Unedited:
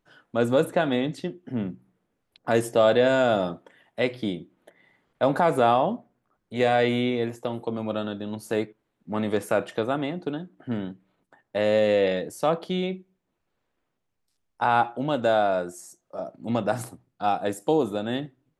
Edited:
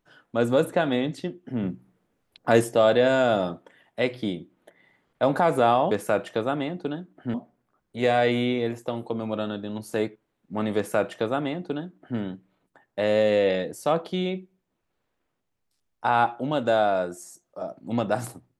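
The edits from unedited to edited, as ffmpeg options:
-filter_complex "[0:a]asplit=5[s0][s1][s2][s3][s4];[s0]atrim=end=1.632[s5];[s1]atrim=start=1.628:end=2.642,asetpts=PTS-STARTPTS,volume=1.5[s6];[s2]atrim=start=2.638:end=5.912[s7];[s3]atrim=start=9.328:end=10.762[s8];[s4]atrim=start=5.908[s9];[s5][s6]acrossfade=d=0.004:c1=hsin:c2=hsin[s10];[s10][s7]acrossfade=d=0.004:c1=hsin:c2=hsin[s11];[s11][s8]acrossfade=d=0.004:c1=hsin:c2=hsin[s12];[s12][s9]acrossfade=d=0.004:c1=hsin:c2=hsin"

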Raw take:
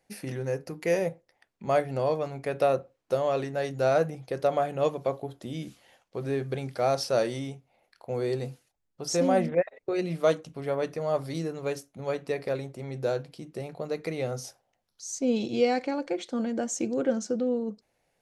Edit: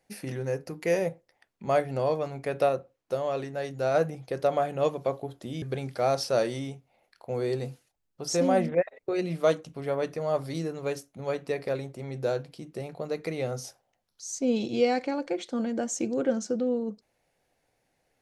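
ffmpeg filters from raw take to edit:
-filter_complex "[0:a]asplit=4[s0][s1][s2][s3];[s0]atrim=end=2.692[s4];[s1]atrim=start=2.688:end=3.942,asetpts=PTS-STARTPTS,volume=0.708[s5];[s2]atrim=start=3.938:end=5.622[s6];[s3]atrim=start=6.418[s7];[s4][s5]acrossfade=d=0.004:c1=hsin:c2=hsin[s8];[s8][s6]acrossfade=d=0.004:c1=hsin:c2=hsin[s9];[s9][s7]acrossfade=d=0.004:c1=hsin:c2=hsin"

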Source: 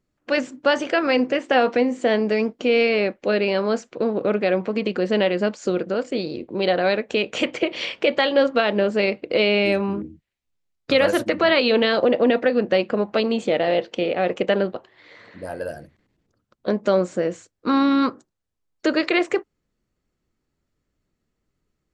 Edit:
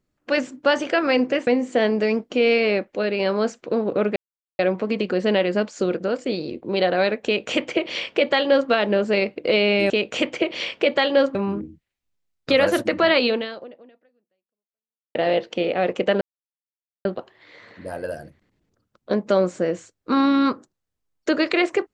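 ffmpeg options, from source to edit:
-filter_complex "[0:a]asplit=9[s0][s1][s2][s3][s4][s5][s6][s7][s8];[s0]atrim=end=1.472[s9];[s1]atrim=start=1.758:end=3.232[s10];[s2]atrim=start=3.228:end=3.492,asetpts=PTS-STARTPTS,volume=0.708[s11];[s3]atrim=start=3.488:end=4.45,asetpts=PTS-STARTPTS,afade=t=out:st=0.958:d=0.004:c=hsin,apad=pad_dur=0.43[s12];[s4]atrim=start=4.45:end=9.762,asetpts=PTS-STARTPTS,afade=t=in:d=0.004:c=hsin[s13];[s5]atrim=start=7.108:end=8.562[s14];[s6]atrim=start=9.758:end=13.56,asetpts=PTS-STARTPTS,afade=t=out:st=1.902:d=1.9:c=exp[s15];[s7]atrim=start=13.56:end=14.62,asetpts=PTS-STARTPTS,afade=t=in:d=0.004:c=hsin,afade=t=out:st=1.056:d=0.004:c=hsin,apad=pad_dur=0.84[s16];[s8]atrim=start=14.62,asetpts=PTS-STARTPTS,afade=t=in:d=0.004:c=hsin[s17];[s9][s10]acrossfade=d=0.004:c1=hsin:c2=hsin[s18];[s18][s11]acrossfade=d=0.004:c1=hsin:c2=hsin[s19];[s12][s13]concat=n=2:v=0:a=1[s20];[s19][s20]acrossfade=d=0.004:c1=hsin:c2=hsin[s21];[s21][s14]acrossfade=d=0.004:c1=hsin:c2=hsin[s22];[s15][s16][s17]concat=n=3:v=0:a=1[s23];[s22][s23]acrossfade=d=0.004:c1=hsin:c2=hsin"

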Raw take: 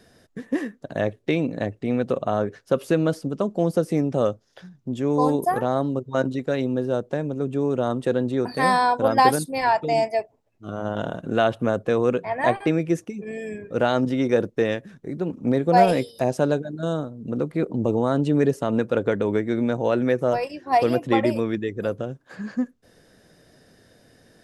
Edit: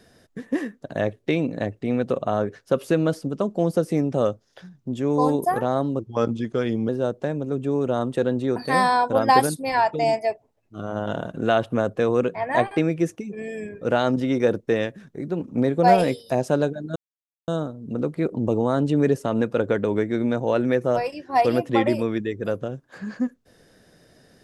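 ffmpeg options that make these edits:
-filter_complex "[0:a]asplit=4[s0][s1][s2][s3];[s0]atrim=end=5.994[s4];[s1]atrim=start=5.99:end=6.78,asetpts=PTS-STARTPTS,asetrate=38808,aresample=44100[s5];[s2]atrim=start=6.776:end=16.85,asetpts=PTS-STARTPTS,afade=t=out:st=10.07:d=0.004:c=hsin,apad=pad_dur=0.52[s6];[s3]atrim=start=16.85,asetpts=PTS-STARTPTS,afade=t=in:d=0.004:c=hsin[s7];[s4][s5]acrossfade=d=0.004:c1=hsin:c2=hsin[s8];[s6][s7]concat=n=2:v=0:a=1[s9];[s8][s9]acrossfade=d=0.004:c1=hsin:c2=hsin"

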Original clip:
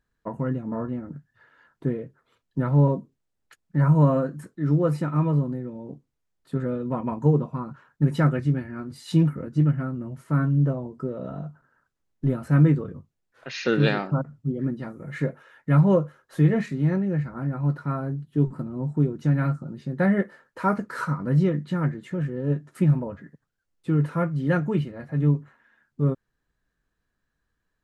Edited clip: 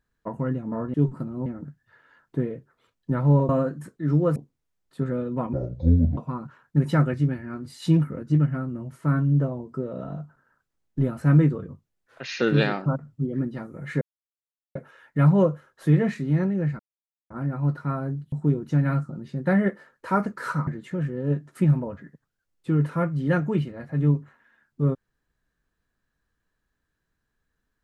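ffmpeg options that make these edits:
-filter_complex "[0:a]asplit=11[s0][s1][s2][s3][s4][s5][s6][s7][s8][s9][s10];[s0]atrim=end=0.942[s11];[s1]atrim=start=18.328:end=18.852[s12];[s2]atrim=start=0.938:end=2.972[s13];[s3]atrim=start=4.068:end=4.942[s14];[s4]atrim=start=5.898:end=7.074[s15];[s5]atrim=start=7.07:end=7.43,asetpts=PTS-STARTPTS,asetrate=24696,aresample=44100[s16];[s6]atrim=start=7.426:end=15.27,asetpts=PTS-STARTPTS,afade=t=out:st=7.84:d=0.004:c=hsin,apad=pad_dur=0.74[s17];[s7]atrim=start=15.27:end=17.31,asetpts=PTS-STARTPTS,afade=t=in:d=0.004:c=hsin,afade=t=out:st=2.036:d=0.004:c=hsin,apad=pad_dur=0.51[s18];[s8]atrim=start=17.31:end=18.332,asetpts=PTS-STARTPTS,afade=t=in:d=0.004:c=hsin[s19];[s9]atrim=start=18.848:end=21.202[s20];[s10]atrim=start=21.868[s21];[s11][s12]acrossfade=d=0.004:c1=hsin:c2=hsin[s22];[s22][s13]acrossfade=d=0.004:c1=hsin:c2=hsin[s23];[s23][s14]acrossfade=d=0.004:c1=hsin:c2=hsin[s24];[s24][s15]acrossfade=d=0.004:c1=hsin:c2=hsin[s25];[s25][s16]acrossfade=d=0.004:c1=hsin:c2=hsin[s26];[s17][s18][s19]concat=n=3:v=0:a=1[s27];[s26][s27]acrossfade=d=0.004:c1=hsin:c2=hsin[s28];[s28][s20]acrossfade=d=0.004:c1=hsin:c2=hsin[s29];[s29][s21]acrossfade=d=0.004:c1=hsin:c2=hsin"

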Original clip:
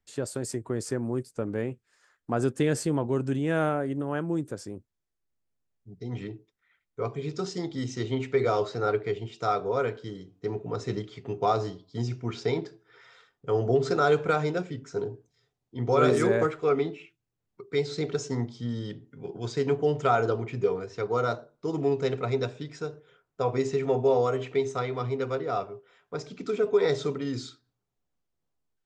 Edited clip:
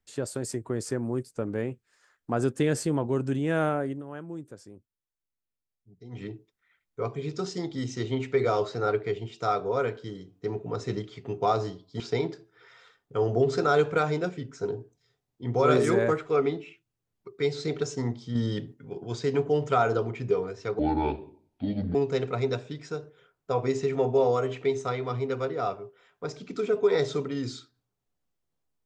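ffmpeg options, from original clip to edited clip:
-filter_complex "[0:a]asplit=8[s0][s1][s2][s3][s4][s5][s6][s7];[s0]atrim=end=4.02,asetpts=PTS-STARTPTS,afade=t=out:st=3.86:d=0.16:silence=0.334965[s8];[s1]atrim=start=4.02:end=6.1,asetpts=PTS-STARTPTS,volume=0.335[s9];[s2]atrim=start=6.1:end=12.002,asetpts=PTS-STARTPTS,afade=t=in:d=0.16:silence=0.334965[s10];[s3]atrim=start=12.328:end=18.682[s11];[s4]atrim=start=18.678:end=19.072,asetpts=PTS-STARTPTS,volume=1.88[s12];[s5]atrim=start=19.068:end=21.124[s13];[s6]atrim=start=21.12:end=21.85,asetpts=PTS-STARTPTS,asetrate=27783,aresample=44100[s14];[s7]atrim=start=21.846[s15];[s8][s9][s10]concat=n=3:v=0:a=1[s16];[s16][s11]acrossfade=d=0.004:c1=hsin:c2=hsin[s17];[s17][s12]acrossfade=d=0.004:c1=hsin:c2=hsin[s18];[s18][s13]acrossfade=d=0.004:c1=hsin:c2=hsin[s19];[s19][s14]acrossfade=d=0.004:c1=hsin:c2=hsin[s20];[s20][s15]acrossfade=d=0.004:c1=hsin:c2=hsin"

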